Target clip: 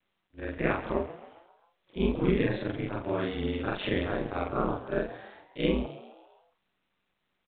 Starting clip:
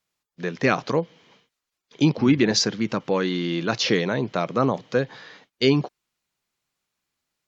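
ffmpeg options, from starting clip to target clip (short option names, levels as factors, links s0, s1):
-filter_complex "[0:a]afftfilt=real='re':imag='-im':win_size=4096:overlap=0.75,aemphasis=mode=reproduction:type=cd,aeval=exprs='val(0)*sin(2*PI*96*n/s)':c=same,asplit=2[s0][s1];[s1]asplit=5[s2][s3][s4][s5][s6];[s2]adelay=134,afreqshift=89,volume=0.178[s7];[s3]adelay=268,afreqshift=178,volume=0.0891[s8];[s4]adelay=402,afreqshift=267,volume=0.0447[s9];[s5]adelay=536,afreqshift=356,volume=0.0221[s10];[s6]adelay=670,afreqshift=445,volume=0.0111[s11];[s7][s8][s9][s10][s11]amix=inputs=5:normalize=0[s12];[s0][s12]amix=inputs=2:normalize=0" -ar 8000 -c:a pcm_mulaw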